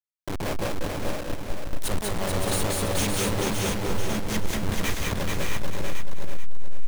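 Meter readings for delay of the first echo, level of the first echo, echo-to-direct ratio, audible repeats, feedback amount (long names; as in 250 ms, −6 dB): 187 ms, −3.5 dB, 3.5 dB, 16, repeats not evenly spaced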